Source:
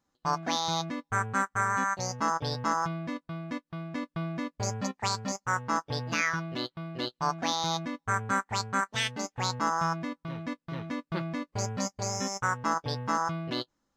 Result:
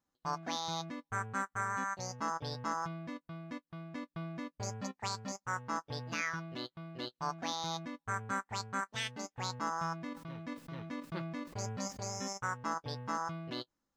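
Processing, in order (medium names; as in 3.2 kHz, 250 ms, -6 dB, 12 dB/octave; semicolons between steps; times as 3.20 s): 10.03–12.33 s: decay stretcher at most 32 dB/s; trim -8 dB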